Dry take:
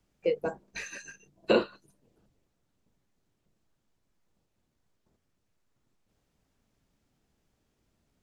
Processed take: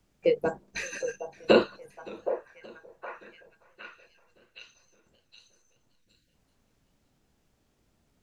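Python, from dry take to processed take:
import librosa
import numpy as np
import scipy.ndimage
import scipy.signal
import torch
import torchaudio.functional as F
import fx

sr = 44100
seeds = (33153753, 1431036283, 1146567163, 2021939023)

y = fx.echo_stepped(x, sr, ms=767, hz=660.0, octaves=0.7, feedback_pct=70, wet_db=-7.5)
y = fx.spec_erase(y, sr, start_s=5.9, length_s=0.43, low_hz=350.0, high_hz=1400.0)
y = fx.echo_warbled(y, sr, ms=572, feedback_pct=54, rate_hz=2.8, cents=127, wet_db=-23)
y = y * 10.0 ** (4.0 / 20.0)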